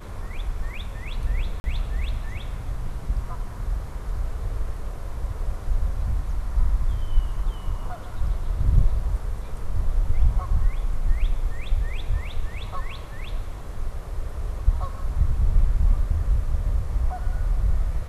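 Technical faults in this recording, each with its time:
1.60–1.64 s: dropout 41 ms

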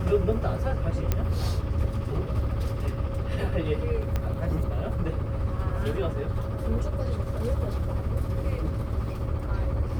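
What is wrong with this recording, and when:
1.12 s: pop -11 dBFS
4.16 s: pop -15 dBFS

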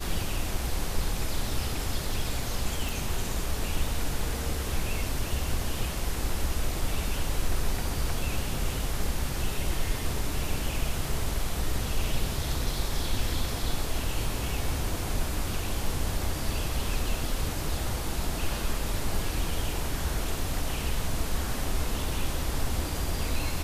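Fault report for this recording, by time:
2.89 s: pop

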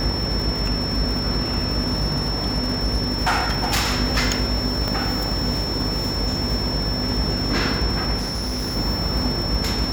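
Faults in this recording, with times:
buzz 50 Hz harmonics 25 -28 dBFS
crackle 240 per s -28 dBFS
whine 5.4 kHz -26 dBFS
1.80–3.97 s: clipped -15.5 dBFS
4.88 s: pop
8.17–8.77 s: clipped -22 dBFS

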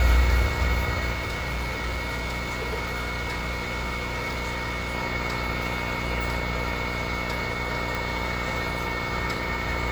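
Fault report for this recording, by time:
buzz 60 Hz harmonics 19 -32 dBFS
whine 2.2 kHz -33 dBFS
1.12–4.95 s: clipped -25.5 dBFS
7.95 s: pop

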